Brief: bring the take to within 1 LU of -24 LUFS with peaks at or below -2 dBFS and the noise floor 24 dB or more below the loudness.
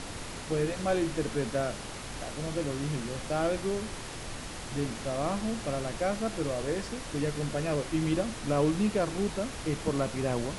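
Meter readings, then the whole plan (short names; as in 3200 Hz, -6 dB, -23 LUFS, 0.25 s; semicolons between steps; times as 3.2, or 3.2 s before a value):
noise floor -40 dBFS; noise floor target -56 dBFS; loudness -32.0 LUFS; peak -14.5 dBFS; loudness target -24.0 LUFS
-> noise print and reduce 16 dB; gain +8 dB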